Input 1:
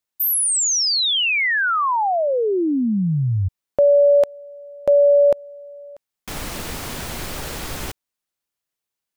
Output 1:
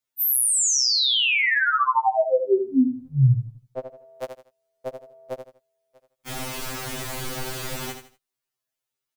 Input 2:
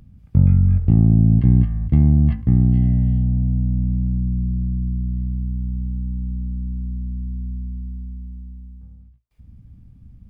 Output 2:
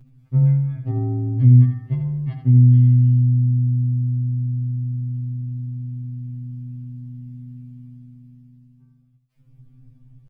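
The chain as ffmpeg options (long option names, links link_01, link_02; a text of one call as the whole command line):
ffmpeg -i in.wav -af "aecho=1:1:80|160|240:0.398|0.115|0.0335,afftfilt=real='re*2.45*eq(mod(b,6),0)':imag='im*2.45*eq(mod(b,6),0)':win_size=2048:overlap=0.75" out.wav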